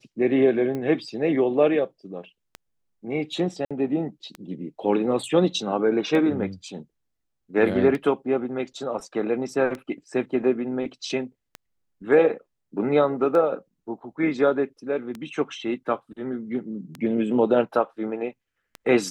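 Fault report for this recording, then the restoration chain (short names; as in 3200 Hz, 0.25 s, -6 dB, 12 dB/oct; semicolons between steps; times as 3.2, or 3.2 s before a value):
tick 33 1/3 rpm -19 dBFS
3.65–3.71 gap 56 ms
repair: de-click; interpolate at 3.65, 56 ms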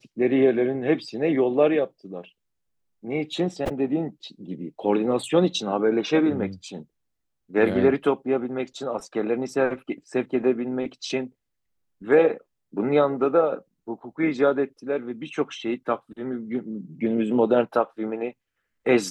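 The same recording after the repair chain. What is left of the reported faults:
none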